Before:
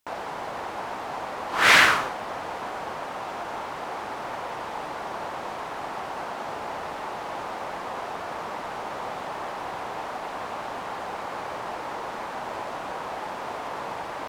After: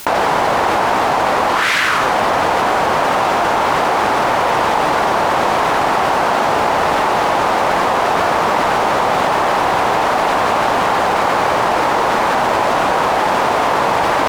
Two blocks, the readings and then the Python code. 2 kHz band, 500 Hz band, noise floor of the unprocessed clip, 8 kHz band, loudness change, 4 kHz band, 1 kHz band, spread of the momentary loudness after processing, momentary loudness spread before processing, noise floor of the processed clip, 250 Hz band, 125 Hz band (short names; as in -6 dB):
+9.5 dB, +18.0 dB, -35 dBFS, +10.5 dB, +14.0 dB, +9.0 dB, +17.0 dB, 0 LU, 4 LU, -16 dBFS, +17.5 dB, +17.5 dB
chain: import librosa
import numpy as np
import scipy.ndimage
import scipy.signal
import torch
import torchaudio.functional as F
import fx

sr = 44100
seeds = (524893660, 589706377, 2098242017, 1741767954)

y = fx.quant_dither(x, sr, seeds[0], bits=12, dither='triangular')
y = fx.env_flatten(y, sr, amount_pct=100)
y = F.gain(torch.from_numpy(y), -1.0).numpy()